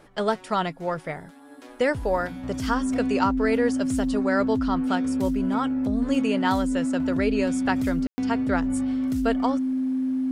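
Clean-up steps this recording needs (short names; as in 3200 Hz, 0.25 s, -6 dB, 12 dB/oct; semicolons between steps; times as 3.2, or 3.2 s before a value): notch 260 Hz, Q 30; room tone fill 8.07–8.18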